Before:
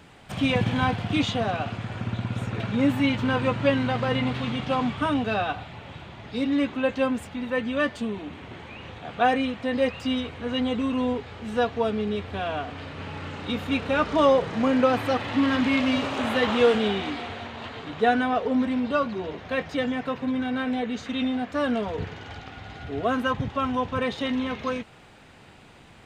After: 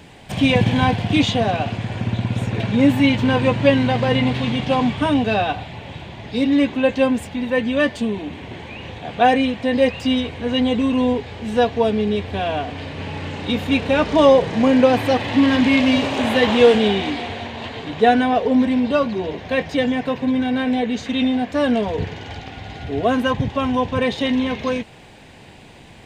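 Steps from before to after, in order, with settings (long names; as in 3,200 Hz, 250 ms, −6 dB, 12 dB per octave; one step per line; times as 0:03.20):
parametric band 1,300 Hz −11.5 dB 0.36 octaves
level +7.5 dB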